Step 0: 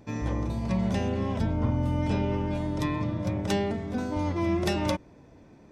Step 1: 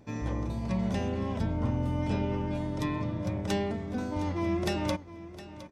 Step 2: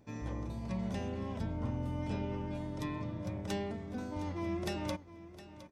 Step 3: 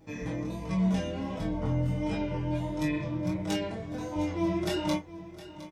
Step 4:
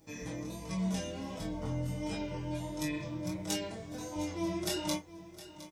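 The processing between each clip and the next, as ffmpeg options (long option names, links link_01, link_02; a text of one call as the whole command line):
ffmpeg -i in.wav -af "aecho=1:1:712:0.168,volume=-3dB" out.wav
ffmpeg -i in.wav -af "highshelf=frequency=9400:gain=3.5,volume=-7dB" out.wav
ffmpeg -i in.wav -filter_complex "[0:a]asplit=2[link_01][link_02];[link_02]aecho=0:1:22|33:0.473|0.355[link_03];[link_01][link_03]amix=inputs=2:normalize=0,flanger=delay=19.5:depth=3.9:speed=1.4,aecho=1:1:6.3:0.68,volume=7.5dB" out.wav
ffmpeg -i in.wav -af "bass=frequency=250:gain=-2,treble=frequency=4000:gain=13,volume=-5.5dB" out.wav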